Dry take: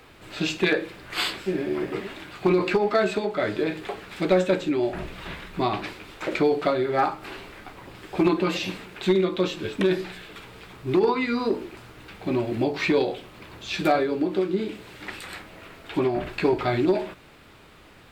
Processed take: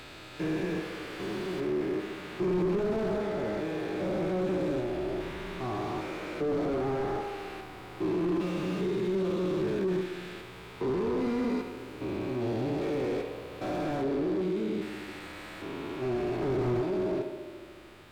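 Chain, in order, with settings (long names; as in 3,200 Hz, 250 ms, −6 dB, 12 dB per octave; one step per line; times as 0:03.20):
spectrum averaged block by block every 400 ms
tape delay 72 ms, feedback 85%, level −11.5 dB, low-pass 2,200 Hz
in parallel at −6.5 dB: hard clipping −30.5 dBFS, distortion −7 dB
on the sum: harmonic and percussive parts rebalanced harmonic +7 dB
slew-rate limiting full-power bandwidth 51 Hz
level −8.5 dB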